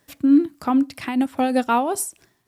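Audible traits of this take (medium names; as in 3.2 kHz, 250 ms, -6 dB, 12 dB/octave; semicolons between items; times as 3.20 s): a quantiser's noise floor 12-bit, dither none; random flutter of the level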